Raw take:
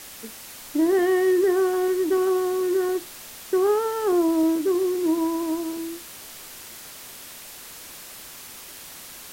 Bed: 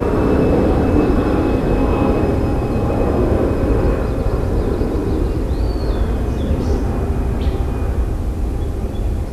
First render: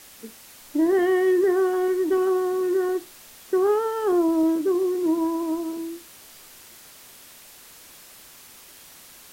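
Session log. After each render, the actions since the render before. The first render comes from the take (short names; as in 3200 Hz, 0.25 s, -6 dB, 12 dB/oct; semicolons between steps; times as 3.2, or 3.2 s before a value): noise print and reduce 6 dB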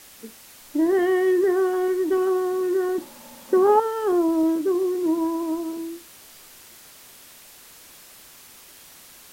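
2.98–3.8 small resonant body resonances 240/550/870 Hz, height 17 dB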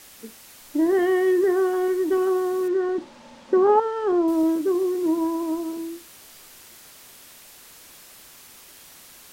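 2.68–4.28 air absorption 120 m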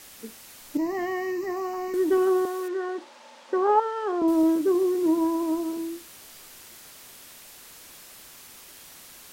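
0.77–1.94 fixed phaser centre 2300 Hz, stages 8; 2.45–4.22 HPF 530 Hz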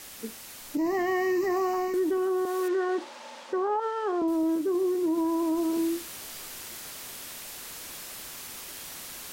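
vocal rider 0.5 s; limiter -20.5 dBFS, peak gain reduction 11 dB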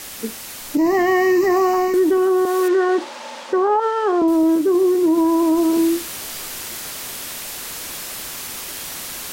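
gain +10.5 dB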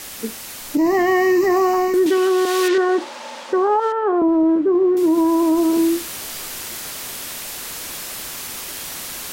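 2.06–2.78 weighting filter D; 3.92–4.97 LPF 1600 Hz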